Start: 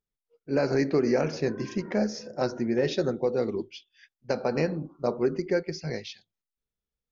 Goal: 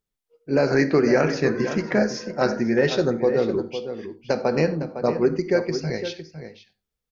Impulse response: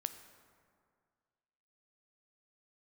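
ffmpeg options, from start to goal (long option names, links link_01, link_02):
-filter_complex "[0:a]asettb=1/sr,asplit=3[link_01][link_02][link_03];[link_01]atrim=end=0.674[link_04];[link_02]atrim=start=0.67:end=2.93,asetpts=PTS-STARTPTS,afade=type=in:duration=0.004:curve=qsin,afade=type=out:start_time=2.256:duration=0.004:curve=qsin,equalizer=frequency=1600:width_type=o:width=0.98:gain=6.5[link_05];[link_03]atrim=start=2.926[link_06];[link_04][link_05]acrossfade=duration=0.004:curve1=hsin:curve2=qsin[link_07];[link_07][link_06]acrossfade=duration=0.004:curve1=qsin:curve2=hsin,asplit=2[link_08][link_09];[link_09]adelay=507.3,volume=-10dB,highshelf=frequency=4000:gain=-11.4[link_10];[link_08][link_10]amix=inputs=2:normalize=0[link_11];[1:a]atrim=start_sample=2205,afade=type=out:start_time=0.15:duration=0.01,atrim=end_sample=7056[link_12];[link_11][link_12]afir=irnorm=-1:irlink=0,volume=6.5dB"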